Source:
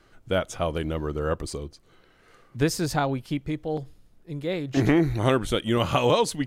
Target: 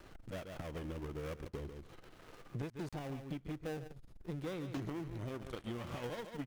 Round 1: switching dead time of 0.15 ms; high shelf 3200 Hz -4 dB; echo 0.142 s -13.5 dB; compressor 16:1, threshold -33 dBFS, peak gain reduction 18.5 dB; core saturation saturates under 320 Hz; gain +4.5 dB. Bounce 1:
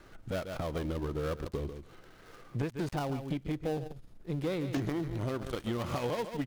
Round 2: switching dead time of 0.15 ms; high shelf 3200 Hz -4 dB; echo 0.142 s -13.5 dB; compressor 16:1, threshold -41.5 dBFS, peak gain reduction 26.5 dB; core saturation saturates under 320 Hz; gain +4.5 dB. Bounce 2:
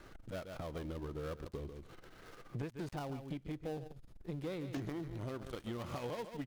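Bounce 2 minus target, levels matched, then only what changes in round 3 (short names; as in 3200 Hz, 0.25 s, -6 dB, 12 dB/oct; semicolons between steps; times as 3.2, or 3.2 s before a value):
switching dead time: distortion -4 dB
change: switching dead time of 0.3 ms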